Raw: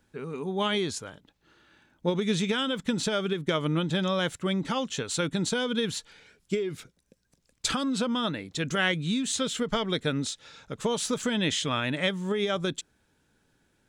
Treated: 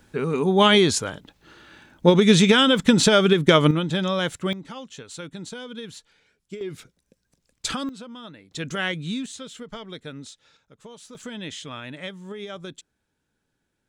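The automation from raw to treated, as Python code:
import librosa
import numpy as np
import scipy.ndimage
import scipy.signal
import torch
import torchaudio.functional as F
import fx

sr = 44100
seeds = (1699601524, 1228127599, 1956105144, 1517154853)

y = fx.gain(x, sr, db=fx.steps((0.0, 11.5), (3.71, 3.0), (4.53, -8.5), (6.61, 0.0), (7.89, -12.0), (8.51, -1.0), (9.26, -9.5), (10.57, -16.0), (11.15, -8.0)))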